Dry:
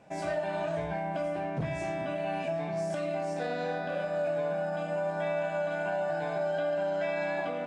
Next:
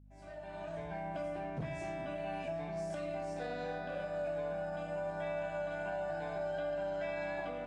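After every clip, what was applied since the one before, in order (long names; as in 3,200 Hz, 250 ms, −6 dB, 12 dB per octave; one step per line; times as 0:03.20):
fade in at the beginning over 1.06 s
mains hum 50 Hz, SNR 19 dB
level −7 dB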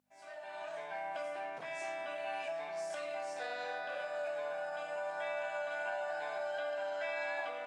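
high-pass filter 810 Hz 12 dB per octave
level +5 dB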